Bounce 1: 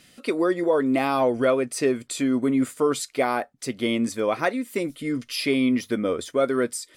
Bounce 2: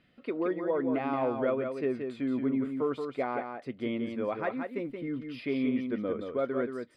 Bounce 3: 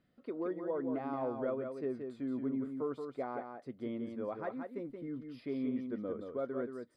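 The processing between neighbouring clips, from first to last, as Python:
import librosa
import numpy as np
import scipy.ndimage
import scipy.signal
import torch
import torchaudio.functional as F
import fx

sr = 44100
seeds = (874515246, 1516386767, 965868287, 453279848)

y1 = fx.air_absorb(x, sr, metres=430.0)
y1 = y1 + 10.0 ** (-6.0 / 20.0) * np.pad(y1, (int(176 * sr / 1000.0), 0))[:len(y1)]
y1 = F.gain(torch.from_numpy(y1), -7.5).numpy()
y2 = fx.peak_eq(y1, sr, hz=2600.0, db=-11.5, octaves=1.0)
y2 = F.gain(torch.from_numpy(y2), -6.5).numpy()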